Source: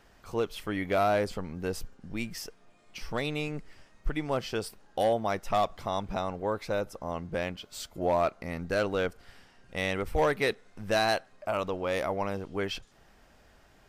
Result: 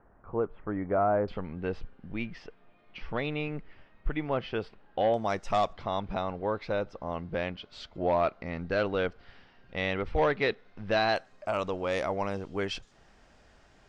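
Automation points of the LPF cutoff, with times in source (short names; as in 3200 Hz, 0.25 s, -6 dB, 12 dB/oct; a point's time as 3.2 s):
LPF 24 dB/oct
1400 Hz
from 1.28 s 3300 Hz
from 5.14 s 7700 Hz
from 5.73 s 4300 Hz
from 11.16 s 8100 Hz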